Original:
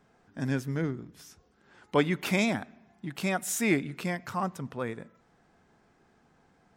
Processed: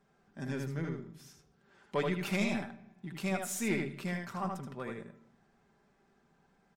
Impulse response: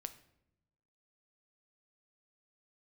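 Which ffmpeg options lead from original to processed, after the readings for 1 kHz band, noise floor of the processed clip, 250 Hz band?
−6.0 dB, −71 dBFS, −5.5 dB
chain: -filter_complex "[0:a]aecho=1:1:5.1:0.47,aeval=exprs='(tanh(6.31*val(0)+0.25)-tanh(0.25))/6.31':channel_layout=same,asplit=2[link_01][link_02];[1:a]atrim=start_sample=2205,highshelf=frequency=10000:gain=-8.5,adelay=78[link_03];[link_02][link_03]afir=irnorm=-1:irlink=0,volume=0dB[link_04];[link_01][link_04]amix=inputs=2:normalize=0,volume=-7dB"

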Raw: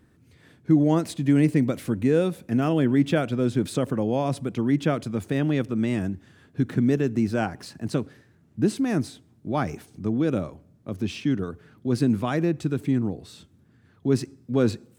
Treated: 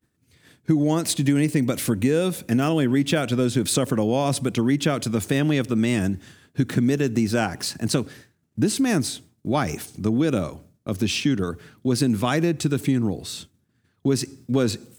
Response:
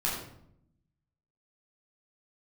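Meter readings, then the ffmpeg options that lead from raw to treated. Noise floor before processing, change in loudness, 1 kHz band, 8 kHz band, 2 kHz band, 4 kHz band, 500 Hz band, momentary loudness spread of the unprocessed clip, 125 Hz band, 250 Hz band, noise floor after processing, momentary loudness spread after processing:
−59 dBFS, +2.0 dB, +3.0 dB, +13.5 dB, +5.0 dB, +10.5 dB, +1.5 dB, 12 LU, +1.5 dB, +1.5 dB, −68 dBFS, 9 LU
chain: -af "agate=range=-33dB:threshold=-47dB:ratio=3:detection=peak,highshelf=frequency=2900:gain=11.5,acompressor=threshold=-22dB:ratio=5,volume=5.5dB"

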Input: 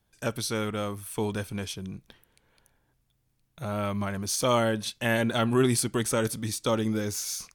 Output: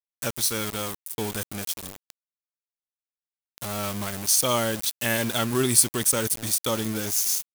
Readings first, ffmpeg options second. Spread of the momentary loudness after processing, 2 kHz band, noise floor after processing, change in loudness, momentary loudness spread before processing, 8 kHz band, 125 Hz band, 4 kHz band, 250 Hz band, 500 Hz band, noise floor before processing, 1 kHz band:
12 LU, +1.5 dB, below −85 dBFS, +4.0 dB, 11 LU, +9.5 dB, −2.0 dB, +5.0 dB, −2.0 dB, −1.5 dB, −72 dBFS, 0.0 dB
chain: -af "aeval=exprs='val(0)*gte(abs(val(0)),0.0237)':channel_layout=same,crystalizer=i=3:c=0,volume=-1.5dB"

